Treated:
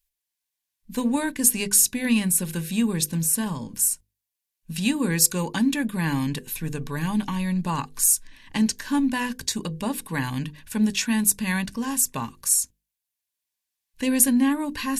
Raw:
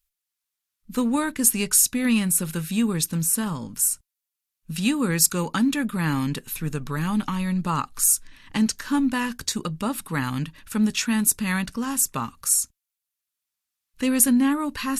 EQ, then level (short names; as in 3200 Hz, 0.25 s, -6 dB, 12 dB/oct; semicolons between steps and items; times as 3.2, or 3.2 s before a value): Butterworth band-stop 1300 Hz, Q 4.4; notches 50/100/150/200/250/300/350/400/450/500 Hz; 0.0 dB